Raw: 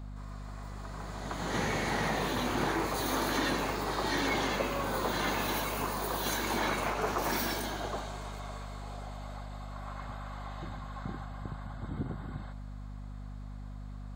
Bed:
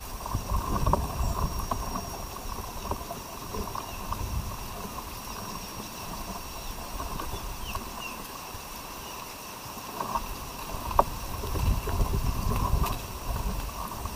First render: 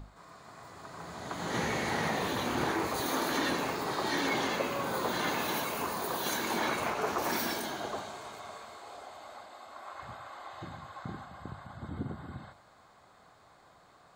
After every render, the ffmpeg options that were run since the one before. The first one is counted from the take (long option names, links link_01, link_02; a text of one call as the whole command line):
ffmpeg -i in.wav -af "bandreject=frequency=50:width_type=h:width=6,bandreject=frequency=100:width_type=h:width=6,bandreject=frequency=150:width_type=h:width=6,bandreject=frequency=200:width_type=h:width=6,bandreject=frequency=250:width_type=h:width=6" out.wav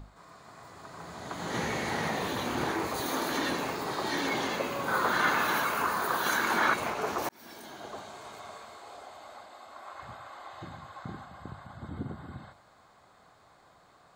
ffmpeg -i in.wav -filter_complex "[0:a]asettb=1/sr,asplit=3[link_01][link_02][link_03];[link_01]atrim=end=4.884[link_04];[link_02]atrim=start=4.88:end=6.74,asetpts=PTS-STARTPTS,afade=type=in:duration=0.004:curve=qsin,afade=type=out:start_time=1.856:duration=0.004:curve=qsin,equalizer=frequency=1400:width_type=o:width=0.92:gain=12[link_05];[link_03]atrim=start=6.736[link_06];[link_04][link_05]acrossfade=duration=0.004:curve1=hsin:curve2=qsin[link_07];[link_07][link_06]acrossfade=duration=0.004:curve1=qsin:curve2=hsin,asplit=2[link_08][link_09];[link_08]atrim=end=7.29,asetpts=PTS-STARTPTS,afade=type=out:start_time=7.286:duration=0.004:curve=hsin[link_10];[link_09]atrim=start=7.29,asetpts=PTS-STARTPTS,afade=type=in:duration=1.09[link_11];[link_10][link_11]concat=n=2:v=0:a=1" out.wav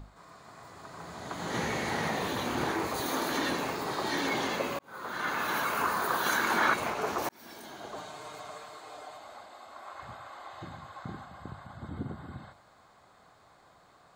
ffmpeg -i in.wav -filter_complex "[0:a]asettb=1/sr,asplit=3[link_01][link_02][link_03];[link_01]atrim=end=7.964[link_04];[link_02]atrim=start=7.96:end=9.18,asetpts=PTS-STARTPTS,afade=type=in:duration=0.004:curve=qsin,afade=type=out:start_time=1.216:duration=0.004:curve=qsin,aecho=1:1:6.6:0.65,atrim=end_sample=53802[link_05];[link_03]atrim=start=9.176[link_06];[link_04][link_05]acrossfade=duration=0.004:curve1=hsin:curve2=qsin[link_07];[link_07][link_06]acrossfade=duration=0.004:curve1=qsin:curve2=hsin,asplit=2[link_08][link_09];[link_08]atrim=end=4.79,asetpts=PTS-STARTPTS,afade=type=out:start_time=4.786:duration=0.004:curve=hsin[link_10];[link_09]atrim=start=4.79,asetpts=PTS-STARTPTS,afade=type=in:duration=1.01[link_11];[link_10][link_11]concat=n=2:v=0:a=1" out.wav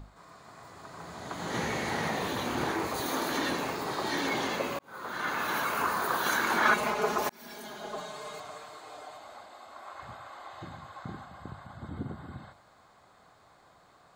ffmpeg -i in.wav -filter_complex "[0:a]asettb=1/sr,asplit=3[link_01][link_02][link_03];[link_01]atrim=end=6.654[link_04];[link_02]atrim=start=6.65:end=8.4,asetpts=PTS-STARTPTS,afade=type=in:duration=0.004:curve=qsin,afade=type=out:start_time=1.746:duration=0.004:curve=qsin,aecho=1:1:4.8:0.89,atrim=end_sample=77175[link_05];[link_03]atrim=start=8.396[link_06];[link_04][link_05]acrossfade=duration=0.004:curve1=hsin:curve2=qsin[link_07];[link_07][link_06]acrossfade=duration=0.004:curve1=qsin:curve2=hsin" out.wav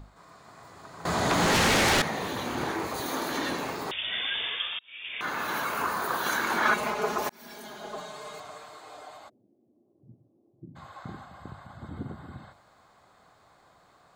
ffmpeg -i in.wav -filter_complex "[0:a]asettb=1/sr,asplit=3[link_01][link_02][link_03];[link_01]atrim=end=1.054[link_04];[link_02]atrim=start=1.05:end=2.02,asetpts=PTS-STARTPTS,afade=type=in:duration=0.004:curve=qsin,afade=type=out:start_time=0.966:duration=0.004:curve=qsin,aeval=exprs='0.112*sin(PI/2*4.47*val(0)/0.112)':channel_layout=same[link_05];[link_03]atrim=start=2.016[link_06];[link_04][link_05]acrossfade=duration=0.004:curve1=hsin:curve2=qsin[link_07];[link_07][link_06]acrossfade=duration=0.004:curve1=qsin:curve2=hsin,asettb=1/sr,asplit=3[link_08][link_09][link_10];[link_08]atrim=end=3.914[link_11];[link_09]atrim=start=3.91:end=5.21,asetpts=PTS-STARTPTS,afade=type=in:duration=0.004:curve=qsin,afade=type=out:start_time=1.296:duration=0.004:curve=qsin,lowpass=frequency=3200:width_type=q:width=0.5098,lowpass=frequency=3200:width_type=q:width=0.6013,lowpass=frequency=3200:width_type=q:width=0.9,lowpass=frequency=3200:width_type=q:width=2.563,afreqshift=-3800[link_12];[link_10]atrim=start=5.206[link_13];[link_11][link_12]acrossfade=duration=0.004:curve1=hsin:curve2=qsin[link_14];[link_14][link_13]acrossfade=duration=0.004:curve1=qsin:curve2=hsin,asplit=3[link_15][link_16][link_17];[link_15]afade=type=out:start_time=9.28:duration=0.02[link_18];[link_16]asuperpass=centerf=200:order=8:qfactor=0.77,afade=type=in:start_time=9.28:duration=0.02,afade=type=out:start_time=10.75:duration=0.02[link_19];[link_17]afade=type=in:start_time=10.75:duration=0.02[link_20];[link_18][link_19][link_20]amix=inputs=3:normalize=0" out.wav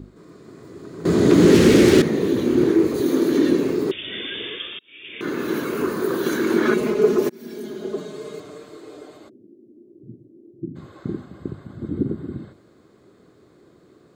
ffmpeg -i in.wav -af "highpass=frequency=150:poles=1,lowshelf=frequency=540:width_type=q:width=3:gain=13" out.wav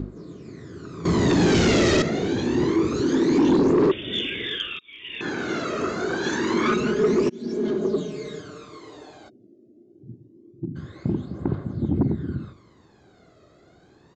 ffmpeg -i in.wav -af "aphaser=in_gain=1:out_gain=1:delay=1.6:decay=0.67:speed=0.26:type=triangular,aresample=16000,asoftclip=type=tanh:threshold=-13.5dB,aresample=44100" out.wav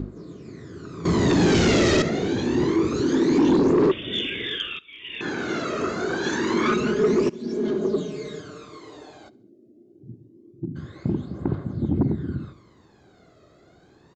ffmpeg -i in.wav -af "aecho=1:1:69|138|207:0.0708|0.0333|0.0156" out.wav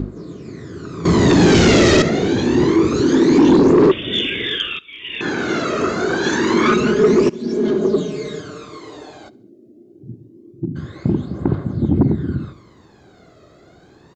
ffmpeg -i in.wav -af "volume=7dB" out.wav